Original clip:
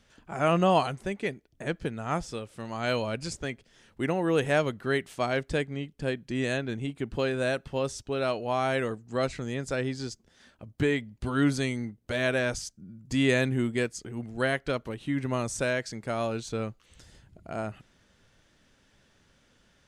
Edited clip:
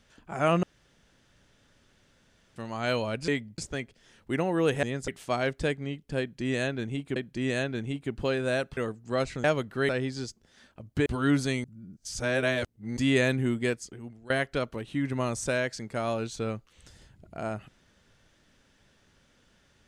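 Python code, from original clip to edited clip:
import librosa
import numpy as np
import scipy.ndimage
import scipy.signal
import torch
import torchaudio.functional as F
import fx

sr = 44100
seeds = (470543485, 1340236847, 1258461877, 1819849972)

y = fx.edit(x, sr, fx.room_tone_fill(start_s=0.63, length_s=1.93),
    fx.swap(start_s=4.53, length_s=0.45, other_s=9.47, other_length_s=0.25),
    fx.repeat(start_s=6.1, length_s=0.96, count=2),
    fx.cut(start_s=7.71, length_s=1.09),
    fx.move(start_s=10.89, length_s=0.3, to_s=3.28),
    fx.reverse_span(start_s=11.77, length_s=1.33),
    fx.fade_out_to(start_s=13.83, length_s=0.6, floor_db=-19.5), tone=tone)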